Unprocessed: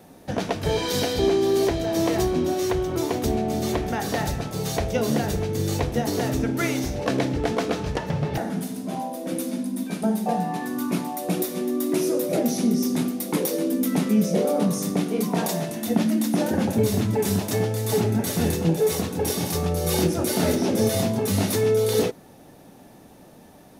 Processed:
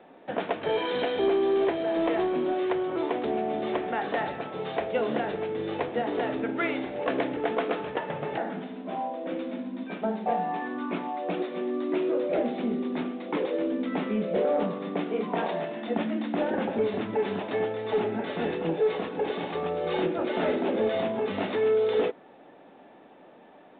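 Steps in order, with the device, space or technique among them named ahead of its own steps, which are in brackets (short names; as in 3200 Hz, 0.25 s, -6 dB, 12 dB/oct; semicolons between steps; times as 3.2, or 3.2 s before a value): telephone (BPF 350–3000 Hz; soft clip -15 dBFS, distortion -24 dB; µ-law 64 kbps 8000 Hz)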